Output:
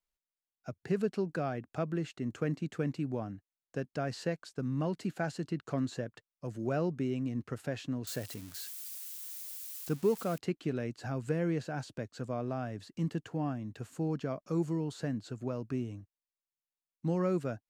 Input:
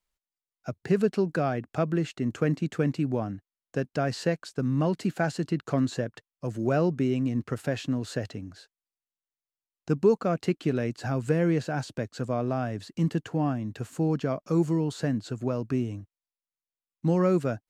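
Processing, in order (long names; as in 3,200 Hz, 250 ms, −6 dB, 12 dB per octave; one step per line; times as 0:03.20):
0:08.07–0:10.38: spike at every zero crossing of −27.5 dBFS
level −7.5 dB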